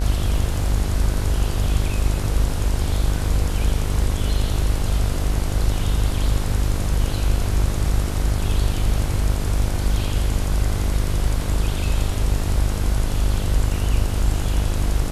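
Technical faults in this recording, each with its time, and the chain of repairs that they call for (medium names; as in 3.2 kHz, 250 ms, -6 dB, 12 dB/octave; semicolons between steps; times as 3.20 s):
buzz 50 Hz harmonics 32 -24 dBFS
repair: de-hum 50 Hz, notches 32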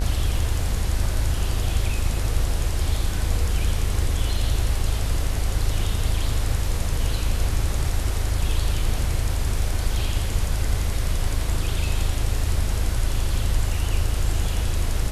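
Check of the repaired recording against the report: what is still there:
nothing left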